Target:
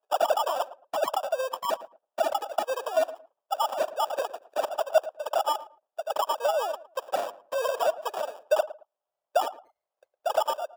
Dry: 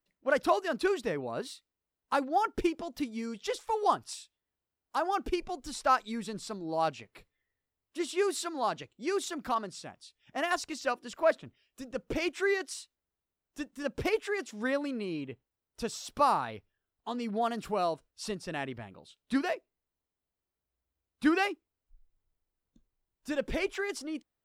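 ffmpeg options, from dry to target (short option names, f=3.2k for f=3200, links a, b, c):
-filter_complex "[0:a]aecho=1:1:4.9:0.52,acrossover=split=1500[a][b];[b]adynamicsmooth=sensitivity=4:basefreq=2k[c];[a][c]amix=inputs=2:normalize=0,asetrate=100107,aresample=44100,acrusher=samples=21:mix=1:aa=0.000001,alimiter=limit=-23.5dB:level=0:latency=1:release=36,highpass=f=630:t=q:w=4.9,asplit=2[d][e];[e]adelay=111,lowpass=f=1.2k:p=1,volume=-15dB,asplit=2[f][g];[g]adelay=111,lowpass=f=1.2k:p=1,volume=0.23[h];[f][h]amix=inputs=2:normalize=0[i];[d][i]amix=inputs=2:normalize=0"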